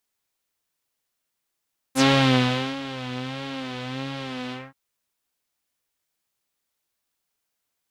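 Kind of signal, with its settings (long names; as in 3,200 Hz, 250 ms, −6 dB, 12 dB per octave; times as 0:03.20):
subtractive patch with vibrato C4, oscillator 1 saw, interval −12 semitones, oscillator 2 level −4.5 dB, noise −7 dB, filter lowpass, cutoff 1,500 Hz, Q 2.1, filter envelope 3 octaves, filter decay 0.08 s, attack 62 ms, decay 0.75 s, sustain −16.5 dB, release 0.21 s, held 2.57 s, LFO 1.5 Hz, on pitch 75 cents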